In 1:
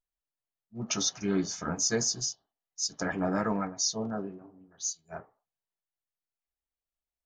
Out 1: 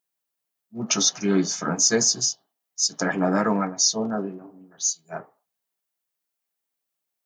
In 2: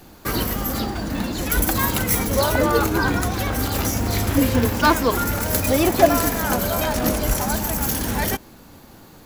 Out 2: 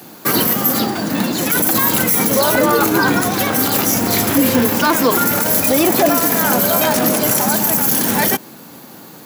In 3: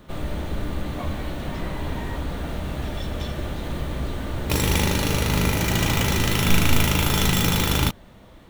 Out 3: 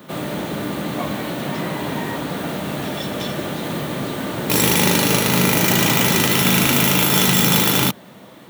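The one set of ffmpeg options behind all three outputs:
-af "highpass=frequency=140:width=0.5412,highpass=frequency=140:width=1.3066,highshelf=frequency=11000:gain=8.5,alimiter=limit=-12dB:level=0:latency=1:release=27,volume=7.5dB"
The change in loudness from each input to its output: +8.5, +6.5, +6.0 LU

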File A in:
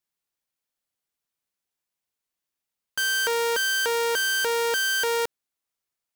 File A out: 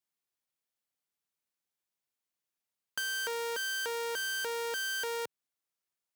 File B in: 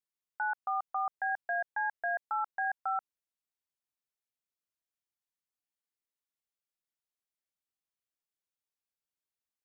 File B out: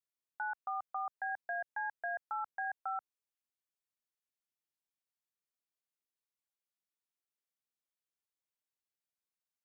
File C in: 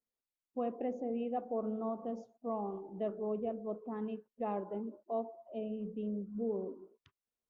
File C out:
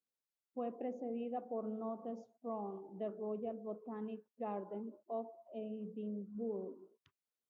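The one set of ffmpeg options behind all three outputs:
-af "highpass=88,acompressor=threshold=-28dB:ratio=6,volume=-4.5dB"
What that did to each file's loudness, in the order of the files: −10.5, −5.5, −4.5 LU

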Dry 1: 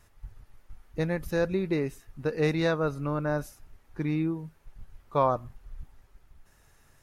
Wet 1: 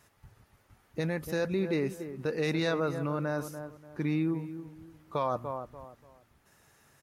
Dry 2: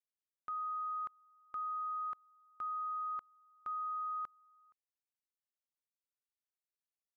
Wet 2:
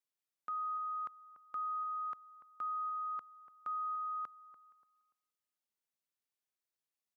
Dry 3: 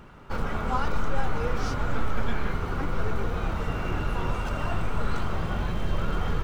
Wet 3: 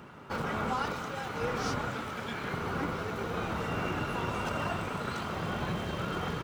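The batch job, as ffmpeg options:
-filter_complex "[0:a]asplit=2[link_01][link_02];[link_02]adelay=290,lowpass=frequency=1500:poles=1,volume=-13dB,asplit=2[link_03][link_04];[link_04]adelay=290,lowpass=frequency=1500:poles=1,volume=0.31,asplit=2[link_05][link_06];[link_06]adelay=290,lowpass=frequency=1500:poles=1,volume=0.31[link_07];[link_01][link_03][link_05][link_07]amix=inputs=4:normalize=0,acrossover=split=2200[link_08][link_09];[link_08]alimiter=limit=-22.5dB:level=0:latency=1:release=13[link_10];[link_10][link_09]amix=inputs=2:normalize=0,highpass=120,volume=1dB"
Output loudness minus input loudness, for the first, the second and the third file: −3.0, +0.5, −3.5 LU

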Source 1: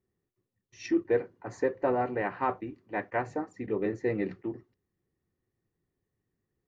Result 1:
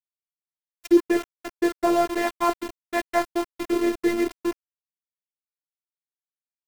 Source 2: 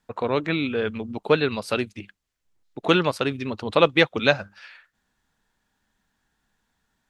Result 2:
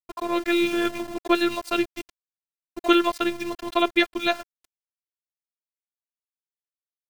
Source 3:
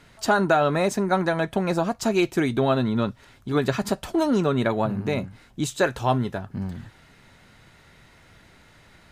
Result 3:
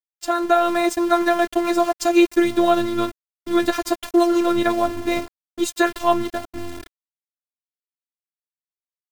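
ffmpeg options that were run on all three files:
-af "aeval=exprs='val(0)*gte(abs(val(0)),0.0211)':channel_layout=same,dynaudnorm=framelen=210:gausssize=5:maxgain=9.5dB,afftfilt=real='hypot(re,im)*cos(PI*b)':imag='0':win_size=512:overlap=0.75,volume=1dB"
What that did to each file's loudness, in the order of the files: +7.0, −1.0, +4.0 LU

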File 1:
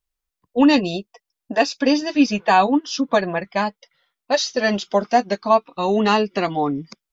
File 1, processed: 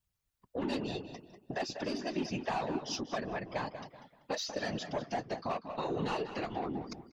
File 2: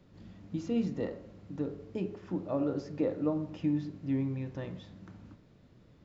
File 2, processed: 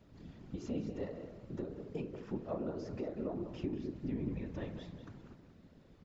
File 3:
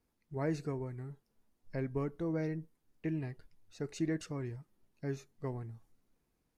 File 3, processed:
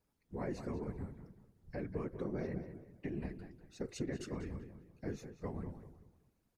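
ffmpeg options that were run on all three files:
-filter_complex "[0:a]asoftclip=type=tanh:threshold=-13dB,acompressor=threshold=-35dB:ratio=4,asplit=2[link_01][link_02];[link_02]adelay=192,lowpass=frequency=3300:poles=1,volume=-9dB,asplit=2[link_03][link_04];[link_04]adelay=192,lowpass=frequency=3300:poles=1,volume=0.34,asplit=2[link_05][link_06];[link_06]adelay=192,lowpass=frequency=3300:poles=1,volume=0.34,asplit=2[link_07][link_08];[link_08]adelay=192,lowpass=frequency=3300:poles=1,volume=0.34[link_09];[link_03][link_05][link_07][link_09]amix=inputs=4:normalize=0[link_10];[link_01][link_10]amix=inputs=2:normalize=0,afftfilt=real='hypot(re,im)*cos(2*PI*random(0))':imag='hypot(re,im)*sin(2*PI*random(1))':win_size=512:overlap=0.75,volume=4.5dB"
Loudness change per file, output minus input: −17.5, −7.0, −4.0 LU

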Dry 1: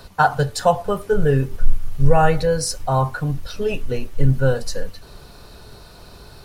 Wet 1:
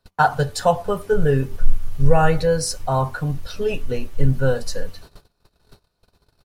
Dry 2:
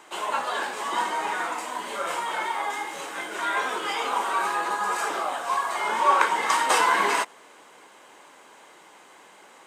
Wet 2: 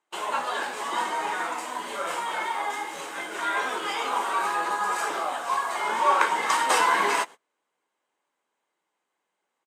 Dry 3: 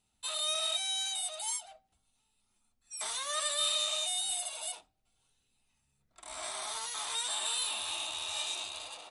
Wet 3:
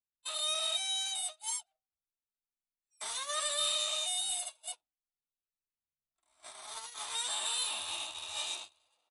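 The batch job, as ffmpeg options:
-filter_complex "[0:a]asplit=2[link_01][link_02];[link_02]adelay=12,volume=-14dB[link_03];[link_01][link_03]amix=inputs=2:normalize=0,agate=range=-29dB:threshold=-37dB:ratio=16:detection=peak,volume=-1dB"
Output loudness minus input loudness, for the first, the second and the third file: −1.0, −1.0, −1.0 LU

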